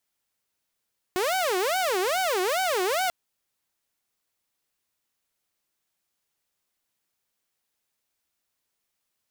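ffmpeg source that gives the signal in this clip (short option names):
-f lavfi -i "aevalsrc='0.0944*(2*mod((561.5*t-200.5/(2*PI*2.4)*sin(2*PI*2.4*t)),1)-1)':d=1.94:s=44100"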